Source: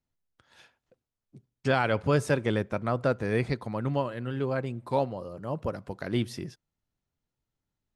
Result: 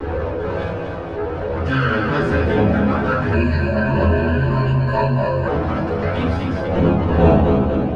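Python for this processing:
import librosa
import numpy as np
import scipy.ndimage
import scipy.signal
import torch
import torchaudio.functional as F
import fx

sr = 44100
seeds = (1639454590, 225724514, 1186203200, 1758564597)

y = fx.bin_compress(x, sr, power=0.6)
y = fx.dmg_wind(y, sr, seeds[0], corner_hz=500.0, level_db=-24.0)
y = fx.env_flanger(y, sr, rest_ms=3.2, full_db=-14.0)
y = np.maximum(y, 0.0)
y = scipy.signal.sosfilt(scipy.signal.butter(2, 68.0, 'highpass', fs=sr, output='sos'), y)
y = fx.spacing_loss(y, sr, db_at_10k=21)
y = fx.resonator_bank(y, sr, root=37, chord='minor', decay_s=0.34)
y = fx.echo_feedback(y, sr, ms=243, feedback_pct=47, wet_db=-8.0)
y = fx.room_shoebox(y, sr, seeds[1], volume_m3=120.0, walls='furnished', distance_m=4.7)
y = fx.chorus_voices(y, sr, voices=2, hz=0.3, base_ms=14, depth_ms=3.2, mix_pct=50)
y = fx.ripple_eq(y, sr, per_octave=1.4, db=17, at=(3.33, 5.48))
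y = fx.env_flatten(y, sr, amount_pct=50)
y = y * 10.0 ** (8.0 / 20.0)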